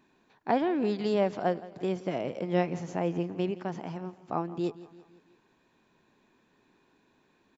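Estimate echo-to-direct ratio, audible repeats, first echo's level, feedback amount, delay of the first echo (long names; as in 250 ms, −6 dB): −16.5 dB, 3, −18.0 dB, 52%, 168 ms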